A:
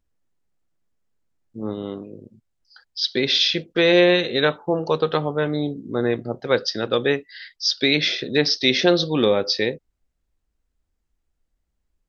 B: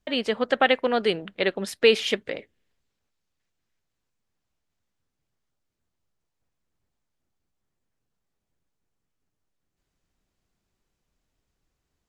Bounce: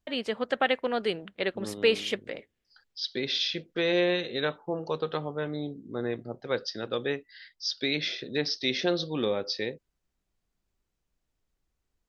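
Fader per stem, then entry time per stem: −10.0, −5.5 decibels; 0.00, 0.00 seconds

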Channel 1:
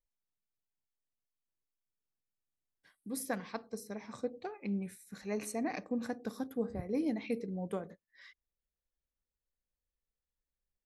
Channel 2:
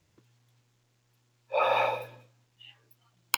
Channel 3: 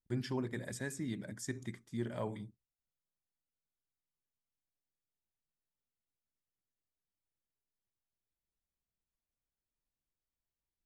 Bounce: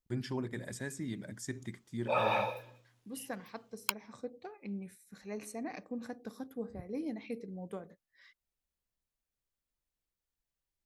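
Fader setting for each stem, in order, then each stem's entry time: −5.0, −5.0, 0.0 decibels; 0.00, 0.55, 0.00 seconds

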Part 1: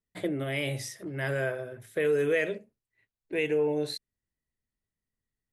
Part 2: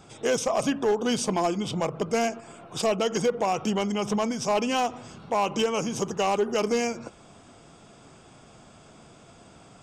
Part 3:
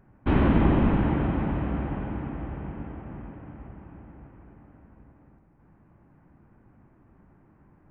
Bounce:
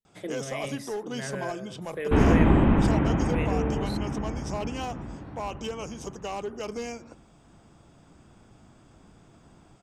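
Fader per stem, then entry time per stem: −5.5, −9.5, +1.5 decibels; 0.00, 0.05, 1.85 seconds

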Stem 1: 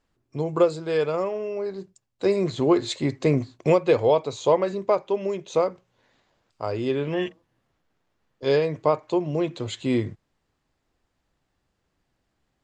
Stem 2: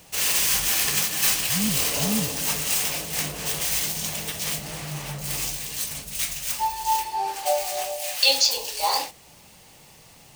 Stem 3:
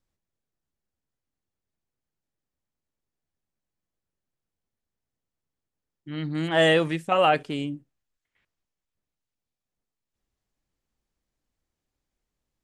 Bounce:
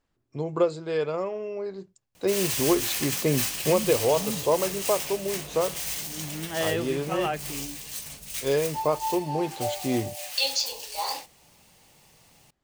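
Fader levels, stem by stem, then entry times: −3.5, −7.0, −9.0 decibels; 0.00, 2.15, 0.00 seconds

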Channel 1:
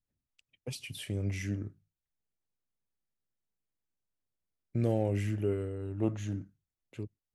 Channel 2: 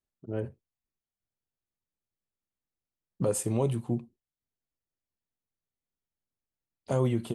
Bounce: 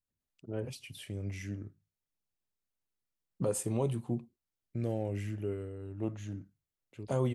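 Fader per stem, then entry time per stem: −5.0, −4.0 decibels; 0.00, 0.20 seconds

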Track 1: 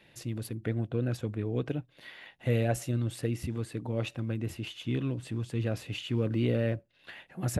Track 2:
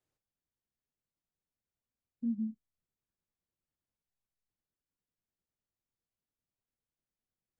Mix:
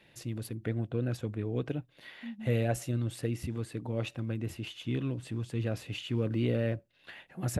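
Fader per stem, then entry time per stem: −1.5, −8.5 decibels; 0.00, 0.00 seconds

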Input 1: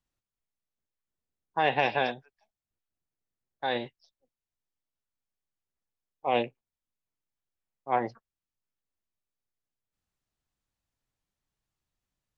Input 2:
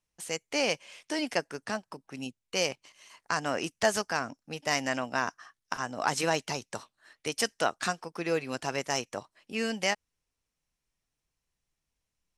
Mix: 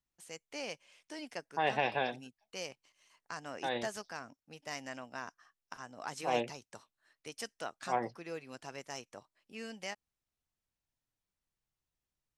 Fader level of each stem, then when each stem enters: −6.0, −13.5 decibels; 0.00, 0.00 seconds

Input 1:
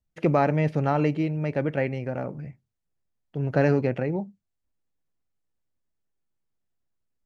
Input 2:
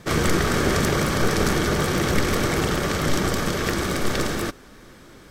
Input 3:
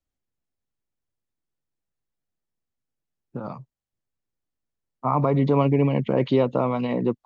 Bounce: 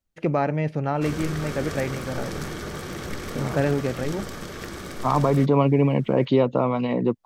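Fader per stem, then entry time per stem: −1.5, −11.5, +1.0 decibels; 0.00, 0.95, 0.00 seconds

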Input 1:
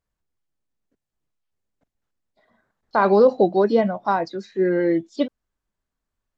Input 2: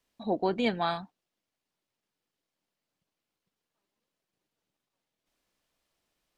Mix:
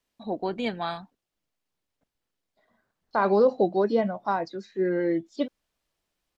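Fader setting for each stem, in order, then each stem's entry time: −5.5, −1.5 decibels; 0.20, 0.00 seconds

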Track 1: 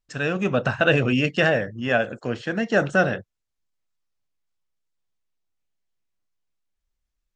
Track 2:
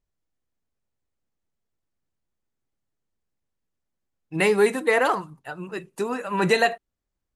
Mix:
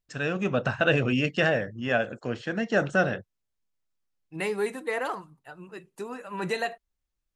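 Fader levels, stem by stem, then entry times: −4.0, −9.5 decibels; 0.00, 0.00 seconds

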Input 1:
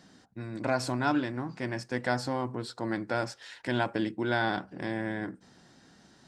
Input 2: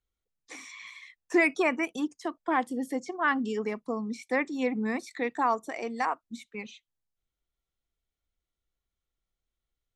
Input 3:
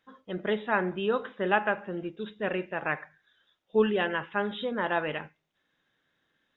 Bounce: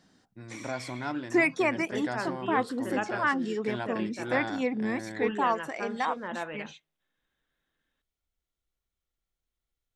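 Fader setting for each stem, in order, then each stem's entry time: −6.5, −0.5, −7.5 decibels; 0.00, 0.00, 1.45 seconds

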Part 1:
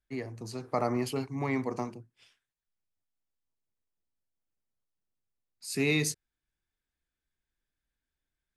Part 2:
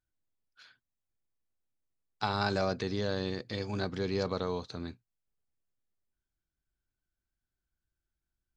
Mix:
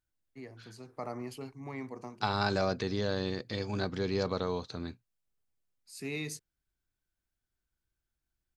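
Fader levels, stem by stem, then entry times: −10.0, +0.5 decibels; 0.25, 0.00 seconds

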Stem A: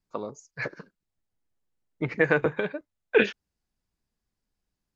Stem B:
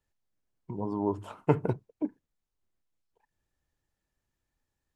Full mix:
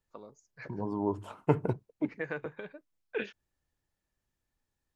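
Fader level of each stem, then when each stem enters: −14.5, −1.5 decibels; 0.00, 0.00 seconds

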